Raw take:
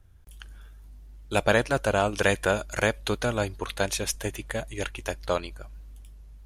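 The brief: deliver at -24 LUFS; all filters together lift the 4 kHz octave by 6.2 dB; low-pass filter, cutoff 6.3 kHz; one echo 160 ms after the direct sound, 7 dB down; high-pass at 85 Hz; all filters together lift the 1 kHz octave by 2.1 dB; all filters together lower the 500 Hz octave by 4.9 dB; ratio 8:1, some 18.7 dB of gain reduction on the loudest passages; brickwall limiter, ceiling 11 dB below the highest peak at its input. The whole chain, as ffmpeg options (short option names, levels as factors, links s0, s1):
-af "highpass=85,lowpass=6300,equalizer=f=500:t=o:g=-8,equalizer=f=1000:t=o:g=5.5,equalizer=f=4000:t=o:g=8,acompressor=threshold=0.0141:ratio=8,alimiter=level_in=2:limit=0.0631:level=0:latency=1,volume=0.501,aecho=1:1:160:0.447,volume=11.2"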